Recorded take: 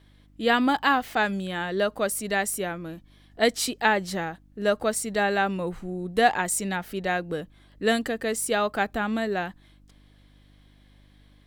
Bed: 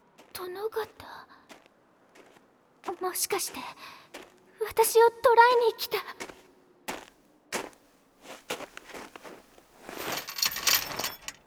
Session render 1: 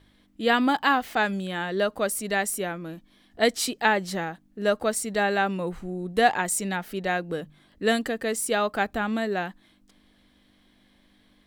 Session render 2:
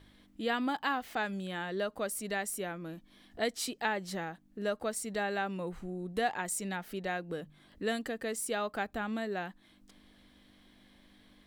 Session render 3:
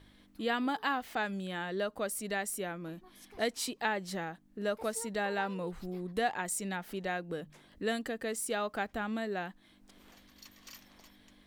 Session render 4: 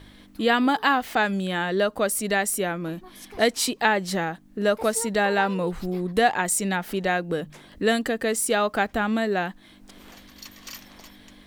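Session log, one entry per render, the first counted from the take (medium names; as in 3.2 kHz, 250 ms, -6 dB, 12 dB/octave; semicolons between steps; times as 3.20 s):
de-hum 50 Hz, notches 3
compression 1.5:1, threshold -48 dBFS, peak gain reduction 12 dB
add bed -28 dB
trim +11.5 dB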